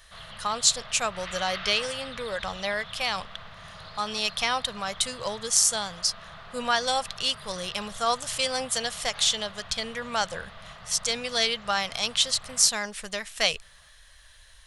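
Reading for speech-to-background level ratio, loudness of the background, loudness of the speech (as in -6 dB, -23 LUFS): 16.0 dB, -42.5 LUFS, -26.5 LUFS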